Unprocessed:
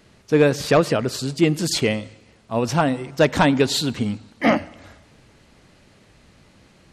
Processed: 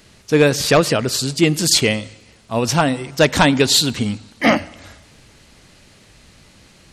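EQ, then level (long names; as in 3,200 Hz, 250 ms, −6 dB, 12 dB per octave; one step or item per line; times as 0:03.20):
low-shelf EQ 82 Hz +5.5 dB
high-shelf EQ 2,400 Hz +9.5 dB
+1.5 dB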